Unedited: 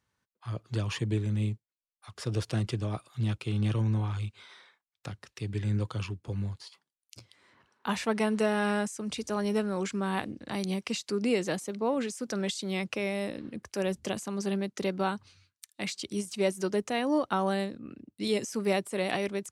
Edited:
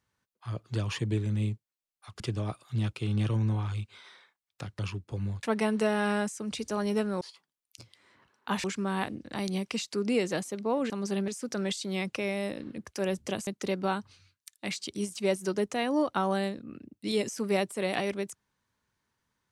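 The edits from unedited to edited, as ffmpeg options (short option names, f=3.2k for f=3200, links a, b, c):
-filter_complex "[0:a]asplit=9[a][b][c][d][e][f][g][h][i];[a]atrim=end=2.202[j];[b]atrim=start=2.648:end=5.242[k];[c]atrim=start=5.948:end=6.592[l];[d]atrim=start=8.018:end=9.802[m];[e]atrim=start=6.588:end=8.022[n];[f]atrim=start=9.798:end=12.062[o];[g]atrim=start=14.248:end=14.632[p];[h]atrim=start=12.058:end=14.252[q];[i]atrim=start=14.628[r];[j][k]acrossfade=d=0.004:c1=hsin:c2=hsin[s];[s][l]acrossfade=d=0.004:c1=hsin:c2=hsin[t];[t][m]acrossfade=d=0.004:c1=hsin:c2=hsin[u];[u][n]acrossfade=d=0.004:c1=hsin:c2=hsin[v];[v][o]acrossfade=d=0.004:c1=hsin:c2=hsin[w];[w][p]acrossfade=d=0.004:c1=hsin:c2=hsin[x];[x][q]acrossfade=d=0.004:c1=hsin:c2=hsin[y];[y][r]acrossfade=d=0.004:c1=hsin:c2=hsin"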